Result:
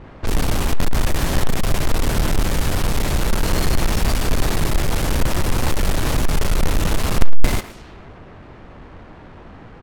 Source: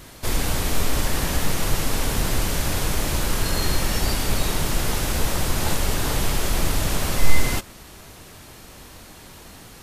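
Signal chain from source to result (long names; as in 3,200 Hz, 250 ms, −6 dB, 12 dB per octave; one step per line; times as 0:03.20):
each half-wave held at its own peak
far-end echo of a speakerphone 110 ms, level −12 dB
low-pass that shuts in the quiet parts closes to 1,500 Hz, open at −14 dBFS
level −1 dB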